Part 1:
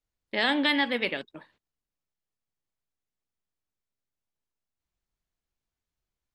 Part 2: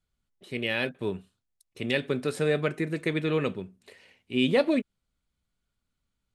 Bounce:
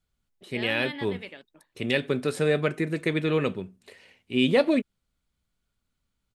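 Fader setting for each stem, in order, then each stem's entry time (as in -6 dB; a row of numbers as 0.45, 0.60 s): -12.5, +2.0 dB; 0.20, 0.00 s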